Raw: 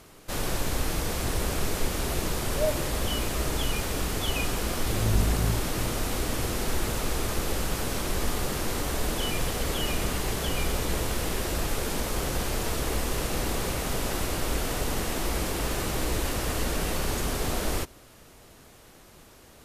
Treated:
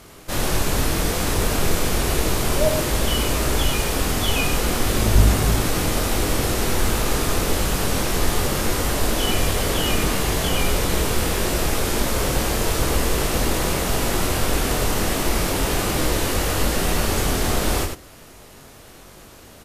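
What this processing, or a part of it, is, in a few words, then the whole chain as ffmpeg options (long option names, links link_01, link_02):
slapback doubling: -filter_complex "[0:a]asplit=3[link_01][link_02][link_03];[link_02]adelay=22,volume=-4dB[link_04];[link_03]adelay=99,volume=-5dB[link_05];[link_01][link_04][link_05]amix=inputs=3:normalize=0,volume=5.5dB"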